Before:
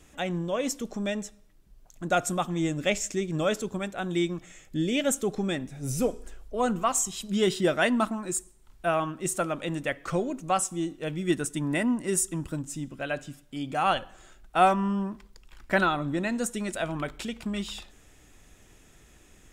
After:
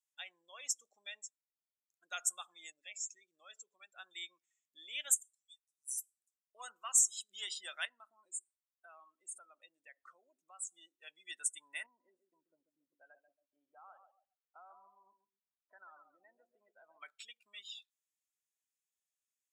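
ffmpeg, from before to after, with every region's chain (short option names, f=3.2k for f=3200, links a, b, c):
-filter_complex "[0:a]asettb=1/sr,asplit=3[a][b][c];[a]atrim=end=2.704[d];[b]atrim=start=2.7:end=3.92,asetpts=PTS-STARTPTS,afade=t=in:d=0.004:c=qsin,afade=t=out:st=1.216:d=0.004:c=qsin,lowpass=8.4k,acompressor=threshold=-34dB:ratio=2.5:attack=3.2:release=140:knee=1:detection=peak[e];[c]atrim=start=3.916[f];[d][e]acrossfade=d=0.004:c1=hsin:c2=qsin[g];[g][f]acrossfade=d=0.004:c1=qsin:c2=hsin,asettb=1/sr,asplit=3[h][i][j];[h]atrim=end=5.124[k];[i]atrim=start=5.12:end=6.55,asetpts=PTS-STARTPTS,afade=t=in:d=0.004:c=qsin,afade=t=out:st=1.426:d=0.004:c=qsin,bandpass=f=6.9k:t=q:w=0.71,aderivative[l];[j]atrim=start=6.546[m];[k][l]acrossfade=d=0.004:c1=hsin:c2=qsin[n];[n][m]acrossfade=d=0.004:c1=qsin:c2=hsin,asettb=1/sr,asplit=3[o][p][q];[o]atrim=end=7.854[r];[p]atrim=start=7.85:end=10.67,asetpts=PTS-STARTPTS,afade=t=in:d=0.004:c=qsin,afade=t=out:st=2.816:d=0.004:c=qsin,tiltshelf=f=1.1k:g=4,acompressor=threshold=-34dB:ratio=3:attack=3.2:release=140:knee=1:detection=peak[s];[q]atrim=start=10.666[t];[r][s]acrossfade=d=0.004:c1=hsin:c2=qsin[u];[u][t]acrossfade=d=0.004:c1=qsin:c2=hsin,asettb=1/sr,asplit=3[v][w][x];[v]atrim=end=11.864[y];[w]atrim=start=11.86:end=17.01,asetpts=PTS-STARTPTS,afade=t=in:d=0.004:c=qsin,afade=t=out:st=5.146:d=0.004:c=qsin,acompressor=threshold=-28dB:ratio=6:attack=3.2:release=140:knee=1:detection=peak,lowpass=1k,aecho=1:1:138|276|414|552|690:0.422|0.177|0.0744|0.0312|0.0131,atrim=end_sample=227115[z];[x]atrim=start=17.006[aa];[y][z]acrossfade=d=0.004:c1=hsin:c2=qsin[ab];[ab][aa]acrossfade=d=0.004:c1=qsin:c2=hsin,afftdn=nr=31:nf=-37,highpass=1k,aderivative"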